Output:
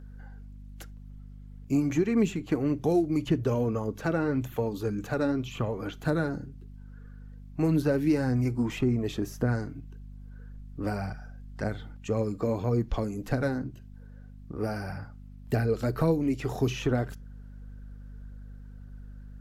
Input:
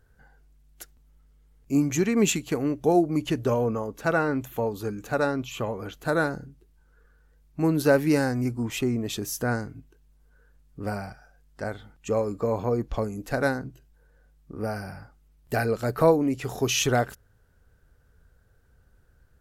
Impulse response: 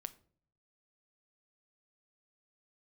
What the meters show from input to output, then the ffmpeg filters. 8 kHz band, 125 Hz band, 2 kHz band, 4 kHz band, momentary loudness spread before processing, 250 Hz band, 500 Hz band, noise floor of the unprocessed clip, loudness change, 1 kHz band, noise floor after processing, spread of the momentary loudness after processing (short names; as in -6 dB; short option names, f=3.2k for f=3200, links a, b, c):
-14.0 dB, +1.5 dB, -7.5 dB, -9.0 dB, 14 LU, -1.0 dB, -4.5 dB, -61 dBFS, -3.0 dB, -7.0 dB, -46 dBFS, 22 LU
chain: -filter_complex "[0:a]aphaser=in_gain=1:out_gain=1:delay=3.9:decay=0.36:speed=1.8:type=triangular,acrossover=split=390|2000[a][b][c];[a]acompressor=threshold=-25dB:ratio=4[d];[b]acompressor=threshold=-37dB:ratio=4[e];[c]acompressor=threshold=-46dB:ratio=4[f];[d][e][f]amix=inputs=3:normalize=0,aeval=exprs='val(0)+0.00501*(sin(2*PI*50*n/s)+sin(2*PI*2*50*n/s)/2+sin(2*PI*3*50*n/s)/3+sin(2*PI*4*50*n/s)/4+sin(2*PI*5*50*n/s)/5)':c=same,asplit=2[g][h];[1:a]atrim=start_sample=2205,atrim=end_sample=3969,lowpass=7.1k[i];[h][i]afir=irnorm=-1:irlink=0,volume=1.5dB[j];[g][j]amix=inputs=2:normalize=0,volume=-3dB"